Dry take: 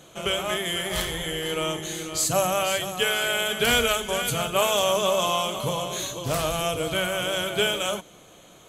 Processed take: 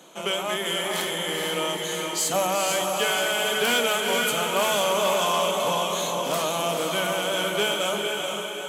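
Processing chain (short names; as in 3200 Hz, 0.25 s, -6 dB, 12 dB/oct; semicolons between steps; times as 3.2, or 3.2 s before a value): bell 920 Hz +6.5 dB 0.28 oct; on a send: diffused feedback echo 0.451 s, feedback 53%, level -4 dB; on the sum: soft clip -15.5 dBFS, distortion -17 dB; steep high-pass 170 Hz 48 dB/oct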